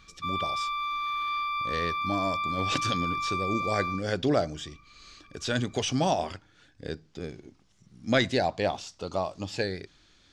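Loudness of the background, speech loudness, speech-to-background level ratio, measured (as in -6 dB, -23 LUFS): -30.5 LUFS, -30.5 LUFS, 0.0 dB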